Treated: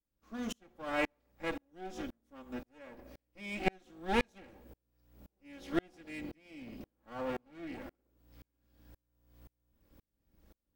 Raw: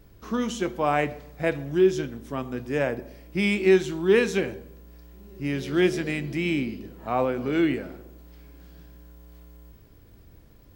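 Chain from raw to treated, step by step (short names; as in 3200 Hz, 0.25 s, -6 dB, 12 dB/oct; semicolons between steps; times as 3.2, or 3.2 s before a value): minimum comb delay 3.6 ms; dB-ramp tremolo swelling 1.9 Hz, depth 38 dB; gain -4 dB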